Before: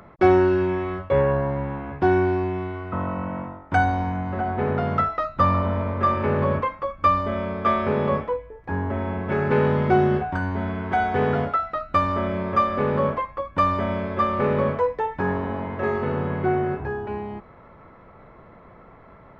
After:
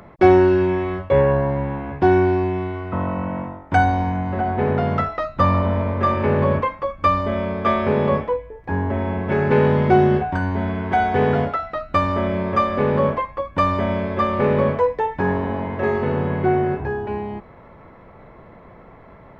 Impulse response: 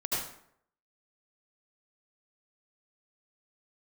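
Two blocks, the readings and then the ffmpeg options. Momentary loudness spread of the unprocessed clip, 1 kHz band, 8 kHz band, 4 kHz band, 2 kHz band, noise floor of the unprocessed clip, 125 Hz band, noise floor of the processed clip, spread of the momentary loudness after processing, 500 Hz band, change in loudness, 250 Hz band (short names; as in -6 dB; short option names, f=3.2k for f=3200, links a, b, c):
9 LU, +2.0 dB, n/a, +4.0 dB, +2.5 dB, -48 dBFS, +4.0 dB, -45 dBFS, 9 LU, +4.0 dB, +3.5 dB, +4.0 dB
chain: -af "equalizer=f=1.3k:t=o:w=0.32:g=-6,volume=4dB"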